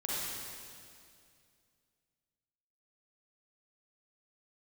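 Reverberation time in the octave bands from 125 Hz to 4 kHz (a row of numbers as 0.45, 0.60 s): 2.8, 2.6, 2.4, 2.2, 2.2, 2.2 s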